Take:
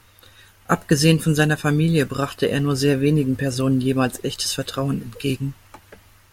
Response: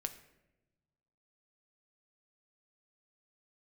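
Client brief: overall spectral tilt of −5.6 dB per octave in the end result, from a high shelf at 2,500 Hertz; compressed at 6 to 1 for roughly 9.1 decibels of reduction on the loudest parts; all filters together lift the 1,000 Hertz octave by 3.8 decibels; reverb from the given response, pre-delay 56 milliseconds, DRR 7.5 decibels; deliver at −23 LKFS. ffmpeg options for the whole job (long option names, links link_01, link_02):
-filter_complex "[0:a]equalizer=frequency=1000:width_type=o:gain=6,highshelf=frequency=2500:gain=-3.5,acompressor=threshold=-20dB:ratio=6,asplit=2[link_01][link_02];[1:a]atrim=start_sample=2205,adelay=56[link_03];[link_02][link_03]afir=irnorm=-1:irlink=0,volume=-6.5dB[link_04];[link_01][link_04]amix=inputs=2:normalize=0,volume=2dB"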